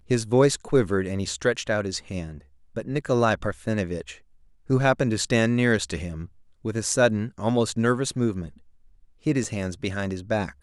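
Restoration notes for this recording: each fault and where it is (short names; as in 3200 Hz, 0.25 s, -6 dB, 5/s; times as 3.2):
9.44 gap 2 ms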